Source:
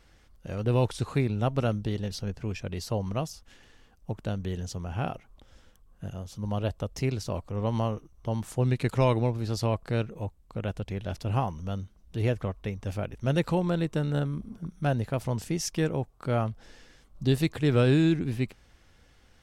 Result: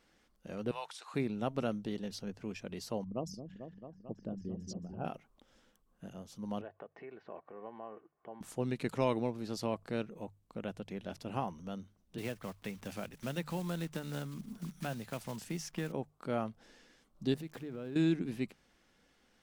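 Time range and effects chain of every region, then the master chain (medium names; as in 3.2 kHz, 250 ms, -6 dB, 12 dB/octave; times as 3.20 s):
0.71–1.14 s: high-pass 780 Hz 24 dB/octave + treble shelf 11 kHz -8 dB
3.04–5.05 s: resonances exaggerated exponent 2 + delay with an opening low-pass 222 ms, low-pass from 400 Hz, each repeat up 1 oct, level -6 dB
6.61–8.41 s: comb 2.7 ms, depth 50% + compression 5:1, threshold -35 dBFS + cabinet simulation 230–2300 Hz, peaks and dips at 280 Hz -9 dB, 570 Hz +6 dB, 890 Hz +4 dB, 1.7 kHz +8 dB
12.18–15.94 s: block-companded coder 5-bit + peaking EQ 380 Hz -7 dB 2.1 oct + three bands compressed up and down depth 70%
17.34–17.96 s: zero-crossing glitches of -27 dBFS + low-pass 1.5 kHz 6 dB/octave + compression, threshold -32 dBFS
whole clip: resonant low shelf 140 Hz -10 dB, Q 1.5; hum notches 50/100/150 Hz; trim -7 dB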